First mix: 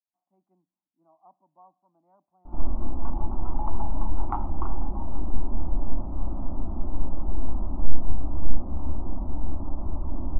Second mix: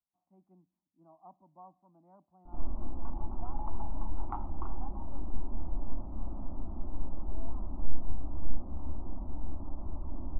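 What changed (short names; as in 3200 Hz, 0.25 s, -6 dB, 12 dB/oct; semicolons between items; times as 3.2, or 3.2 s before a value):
speech: remove HPF 490 Hz 6 dB/oct; background -8.5 dB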